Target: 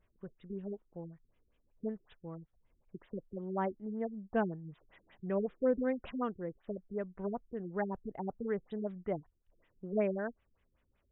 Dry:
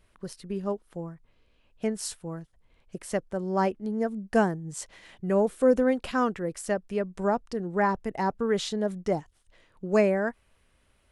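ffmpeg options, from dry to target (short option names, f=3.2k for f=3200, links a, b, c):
-filter_complex "[0:a]asettb=1/sr,asplit=3[a][b][c];[a]atrim=end=8.104[d];[b]atrim=start=8.1:end=8.71,asetpts=PTS-STARTPTS,afade=t=in:d=0.004:c=qsin,afade=t=out:st=0.606:d=0.004:c=qsin,highshelf=f=4.4k:t=q:w=3:g=7.5[e];[c]atrim=start=8.706[f];[d][e]acrossfade=d=0.004:c1=hsin:c2=qsin[g];[g][f]acrossfade=d=0.004:c1=qsin:c2=hsin,afftfilt=real='re*lt(b*sr/1024,390*pow(3900/390,0.5+0.5*sin(2*PI*5.3*pts/sr)))':imag='im*lt(b*sr/1024,390*pow(3900/390,0.5+0.5*sin(2*PI*5.3*pts/sr)))':win_size=1024:overlap=0.75,volume=-9dB"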